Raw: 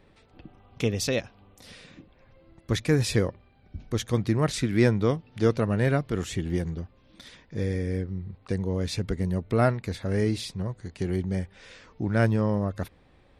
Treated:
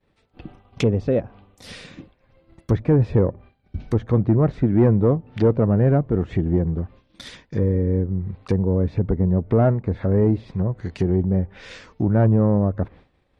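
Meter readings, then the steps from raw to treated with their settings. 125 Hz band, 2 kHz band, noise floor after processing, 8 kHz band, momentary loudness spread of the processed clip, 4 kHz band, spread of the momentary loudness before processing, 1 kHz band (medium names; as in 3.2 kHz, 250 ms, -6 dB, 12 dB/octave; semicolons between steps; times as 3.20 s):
+7.5 dB, -5.0 dB, -64 dBFS, under -10 dB, 14 LU, no reading, 11 LU, +2.5 dB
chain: Chebyshev shaper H 5 -16 dB, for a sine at -9.5 dBFS; expander -42 dBFS; low-pass that closes with the level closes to 790 Hz, closed at -22 dBFS; trim +4 dB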